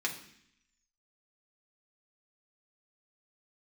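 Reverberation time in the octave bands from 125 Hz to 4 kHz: 0.85, 0.90, 0.65, 0.65, 0.85, 0.85 seconds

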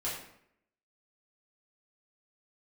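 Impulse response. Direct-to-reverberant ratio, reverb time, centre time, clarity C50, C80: −8.5 dB, 0.70 s, 46 ms, 3.0 dB, 6.5 dB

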